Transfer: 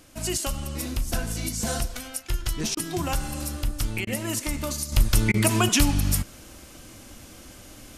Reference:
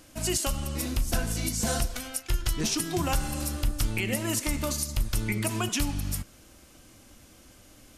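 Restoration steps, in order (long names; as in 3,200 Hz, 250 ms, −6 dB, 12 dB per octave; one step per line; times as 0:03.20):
repair the gap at 0:02.75/0:04.05/0:05.32, 19 ms
downward expander −38 dBFS, range −21 dB
level correction −8 dB, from 0:04.92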